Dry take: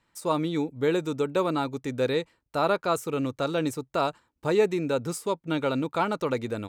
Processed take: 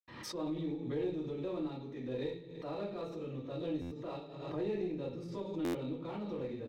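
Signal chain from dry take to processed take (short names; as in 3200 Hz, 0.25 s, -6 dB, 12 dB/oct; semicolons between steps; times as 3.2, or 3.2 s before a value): HPF 44 Hz 12 dB/oct; resonant high shelf 5400 Hz -8 dB, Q 1.5; notch 1500 Hz, Q 7.5; reverb RT60 0.45 s, pre-delay 76 ms; in parallel at -5.5 dB: one-sided clip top -45.5 dBFS; on the sum: dynamic EQ 1400 Hz, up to -8 dB, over -55 dBFS, Q 0.94; on a send: feedback echo 0.107 s, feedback 47%, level -16 dB; on the sum: stuck buffer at 3.81/5.64, samples 512, times 8; backwards sustainer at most 50 dB/s; gain -2 dB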